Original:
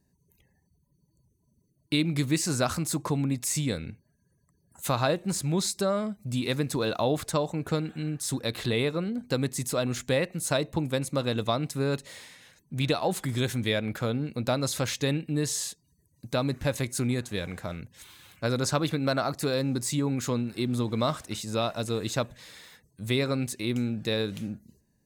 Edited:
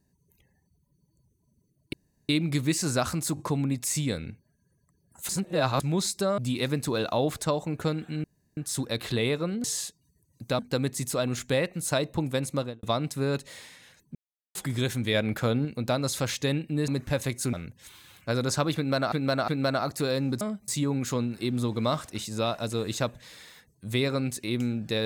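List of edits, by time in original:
0:01.93: splice in room tone 0.36 s
0:02.99: stutter 0.02 s, 3 plays
0:04.89–0:05.40: reverse
0:05.98–0:06.25: move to 0:19.84
0:08.11: splice in room tone 0.33 s
0:11.13–0:11.42: fade out and dull
0:12.74–0:13.14: silence
0:13.73–0:14.24: clip gain +3 dB
0:15.47–0:16.42: move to 0:09.18
0:17.07–0:17.68: remove
0:18.91–0:19.27: repeat, 3 plays

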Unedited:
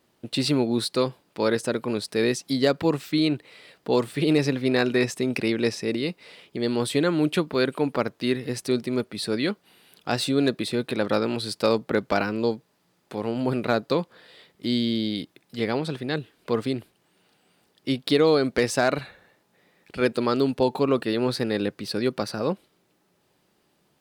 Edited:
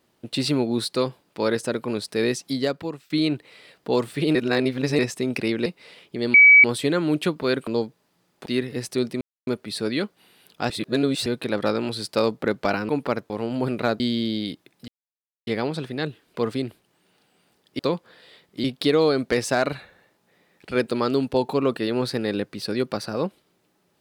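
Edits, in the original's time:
0:02.44–0:03.10: fade out, to −23 dB
0:04.35–0:04.99: reverse
0:05.66–0:06.07: remove
0:06.75: insert tone 2,280 Hz −7.5 dBFS 0.30 s
0:07.78–0:08.19: swap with 0:12.36–0:13.15
0:08.94: splice in silence 0.26 s
0:10.17–0:10.73: reverse
0:13.85–0:14.70: move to 0:17.90
0:15.58: splice in silence 0.59 s

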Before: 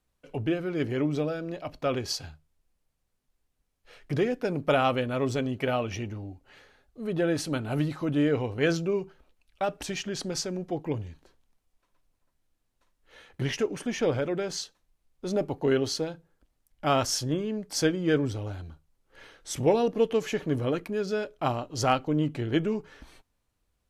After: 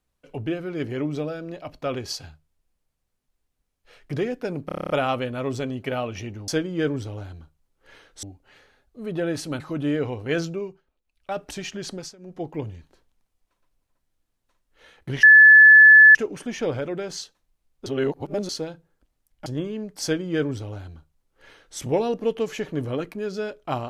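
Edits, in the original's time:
0:04.66: stutter 0.03 s, 9 plays
0:07.61–0:07.92: remove
0:08.78–0:09.71: duck −14 dB, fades 0.39 s
0:10.24–0:10.74: duck −18.5 dB, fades 0.24 s
0:13.55: insert tone 1,730 Hz −6.5 dBFS 0.92 s
0:15.26–0:15.89: reverse
0:16.86–0:17.20: remove
0:17.77–0:19.52: duplicate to 0:06.24

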